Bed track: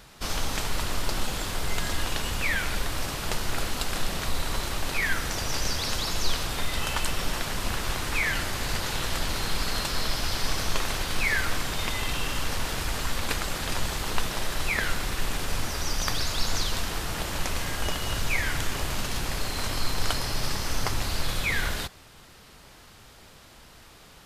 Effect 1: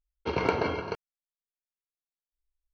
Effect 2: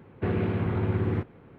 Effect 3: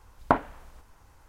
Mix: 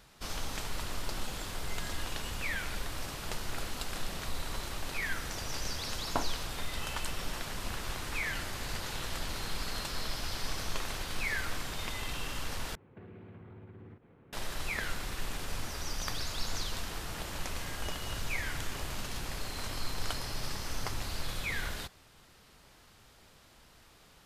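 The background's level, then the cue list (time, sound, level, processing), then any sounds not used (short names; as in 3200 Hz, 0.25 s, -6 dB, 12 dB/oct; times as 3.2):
bed track -8.5 dB
5.85 add 3 -6 dB + limiter -9.5 dBFS
12.75 replace with 2 -8.5 dB + compressor 12:1, threshold -38 dBFS
not used: 1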